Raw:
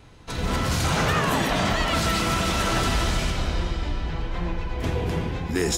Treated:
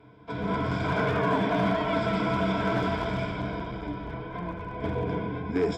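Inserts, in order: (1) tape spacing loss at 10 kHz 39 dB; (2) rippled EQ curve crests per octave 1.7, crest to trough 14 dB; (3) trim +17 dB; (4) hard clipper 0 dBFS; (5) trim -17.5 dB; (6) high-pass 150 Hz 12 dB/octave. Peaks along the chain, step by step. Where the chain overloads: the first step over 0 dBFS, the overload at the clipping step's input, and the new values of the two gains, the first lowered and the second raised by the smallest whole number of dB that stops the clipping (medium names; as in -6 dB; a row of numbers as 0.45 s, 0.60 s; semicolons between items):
-15.0 dBFS, -10.5 dBFS, +6.5 dBFS, 0.0 dBFS, -17.5 dBFS, -14.0 dBFS; step 3, 6.5 dB; step 3 +10 dB, step 5 -10.5 dB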